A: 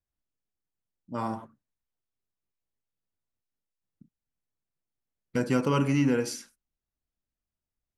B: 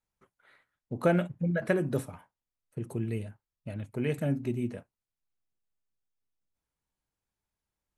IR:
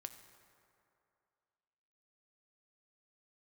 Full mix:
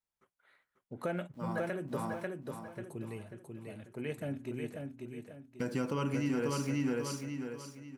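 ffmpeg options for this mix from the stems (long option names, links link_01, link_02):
-filter_complex "[0:a]aeval=exprs='val(0)*gte(abs(val(0)),0.00316)':channel_layout=same,adelay=250,volume=-3dB,asplit=2[link_01][link_02];[link_02]volume=-3.5dB[link_03];[1:a]lowshelf=frequency=220:gain=-8,volume=-5.5dB,asplit=3[link_04][link_05][link_06];[link_05]volume=-4.5dB[link_07];[link_06]apad=whole_len=362817[link_08];[link_01][link_08]sidechaincompress=threshold=-35dB:ratio=10:attack=6.3:release=1090[link_09];[link_03][link_07]amix=inputs=2:normalize=0,aecho=0:1:541|1082|1623|2164|2705:1|0.35|0.122|0.0429|0.015[link_10];[link_09][link_04][link_10]amix=inputs=3:normalize=0,alimiter=limit=-24dB:level=0:latency=1:release=167"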